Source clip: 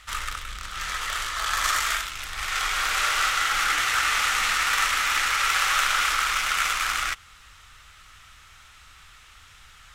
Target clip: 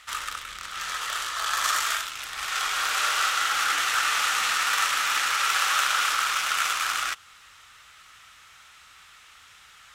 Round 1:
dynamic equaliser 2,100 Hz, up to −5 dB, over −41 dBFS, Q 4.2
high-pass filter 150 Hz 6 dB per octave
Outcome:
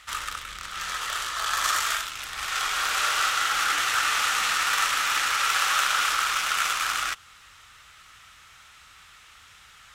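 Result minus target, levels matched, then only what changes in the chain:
125 Hz band +5.0 dB
change: high-pass filter 320 Hz 6 dB per octave

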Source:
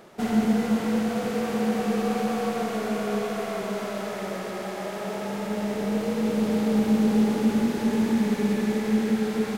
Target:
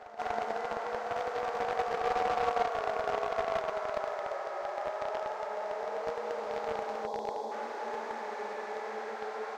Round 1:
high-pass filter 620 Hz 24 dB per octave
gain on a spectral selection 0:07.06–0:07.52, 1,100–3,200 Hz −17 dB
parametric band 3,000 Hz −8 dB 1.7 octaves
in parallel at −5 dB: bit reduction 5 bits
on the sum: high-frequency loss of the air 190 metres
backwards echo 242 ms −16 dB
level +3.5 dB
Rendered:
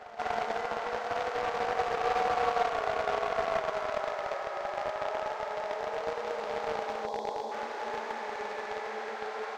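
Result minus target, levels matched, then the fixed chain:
4,000 Hz band +3.0 dB
high-pass filter 620 Hz 24 dB per octave
gain on a spectral selection 0:07.06–0:07.52, 1,100–3,200 Hz −17 dB
parametric band 3,000 Hz −14 dB 1.7 octaves
in parallel at −5 dB: bit reduction 5 bits
on the sum: high-frequency loss of the air 190 metres
backwards echo 242 ms −16 dB
level +3.5 dB

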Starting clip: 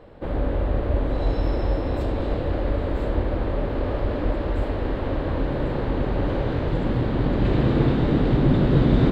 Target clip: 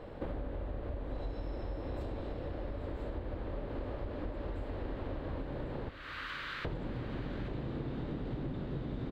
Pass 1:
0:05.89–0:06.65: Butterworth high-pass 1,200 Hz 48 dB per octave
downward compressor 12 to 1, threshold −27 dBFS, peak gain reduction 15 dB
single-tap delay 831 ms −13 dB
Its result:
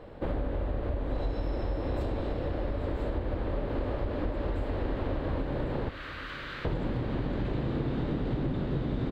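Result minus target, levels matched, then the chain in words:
downward compressor: peak gain reduction −8 dB
0:05.89–0:06.65: Butterworth high-pass 1,200 Hz 48 dB per octave
downward compressor 12 to 1, threshold −35.5 dBFS, peak gain reduction 23 dB
single-tap delay 831 ms −13 dB

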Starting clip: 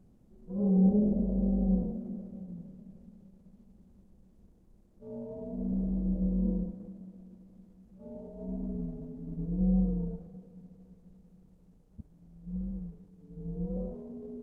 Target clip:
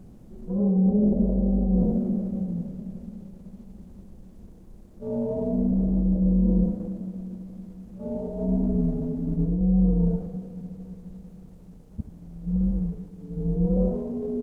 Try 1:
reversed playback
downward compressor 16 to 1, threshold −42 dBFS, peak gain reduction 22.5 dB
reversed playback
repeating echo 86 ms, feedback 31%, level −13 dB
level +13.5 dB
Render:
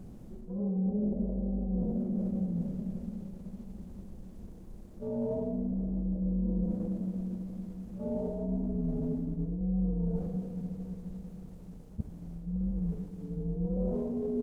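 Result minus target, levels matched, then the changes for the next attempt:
downward compressor: peak gain reduction +10 dB
change: downward compressor 16 to 1, threshold −31.5 dBFS, peak gain reduction 12.5 dB

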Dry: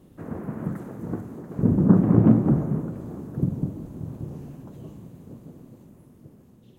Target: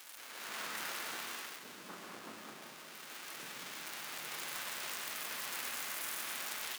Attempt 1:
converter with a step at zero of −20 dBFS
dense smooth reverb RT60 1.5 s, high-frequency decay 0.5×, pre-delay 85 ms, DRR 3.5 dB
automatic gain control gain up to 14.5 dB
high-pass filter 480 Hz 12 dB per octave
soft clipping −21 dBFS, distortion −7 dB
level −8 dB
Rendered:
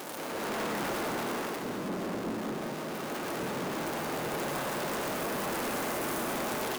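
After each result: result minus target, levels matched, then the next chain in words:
500 Hz band +12.5 dB; converter with a step at zero: distortion +8 dB
converter with a step at zero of −20 dBFS
dense smooth reverb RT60 1.5 s, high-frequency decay 0.5×, pre-delay 85 ms, DRR 3.5 dB
automatic gain control gain up to 14.5 dB
high-pass filter 1,800 Hz 12 dB per octave
soft clipping −21 dBFS, distortion −7 dB
level −8 dB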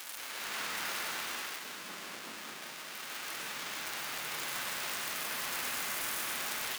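converter with a step at zero: distortion +8 dB
converter with a step at zero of −30 dBFS
dense smooth reverb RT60 1.5 s, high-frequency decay 0.5×, pre-delay 85 ms, DRR 3.5 dB
automatic gain control gain up to 14.5 dB
high-pass filter 1,800 Hz 12 dB per octave
soft clipping −21 dBFS, distortion −14 dB
level −8 dB

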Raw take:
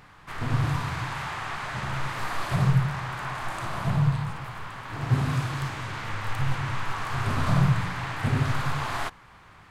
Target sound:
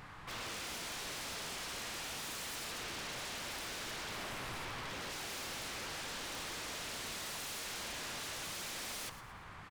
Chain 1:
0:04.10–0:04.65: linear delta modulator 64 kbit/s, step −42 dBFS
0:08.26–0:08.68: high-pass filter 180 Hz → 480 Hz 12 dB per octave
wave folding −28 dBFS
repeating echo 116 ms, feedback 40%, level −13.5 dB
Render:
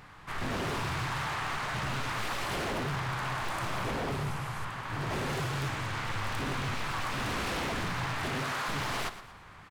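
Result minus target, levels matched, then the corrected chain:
wave folding: distortion −30 dB
0:04.10–0:04.65: linear delta modulator 64 kbit/s, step −42 dBFS
0:08.26–0:08.68: high-pass filter 180 Hz → 480 Hz 12 dB per octave
wave folding −38.5 dBFS
repeating echo 116 ms, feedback 40%, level −13.5 dB

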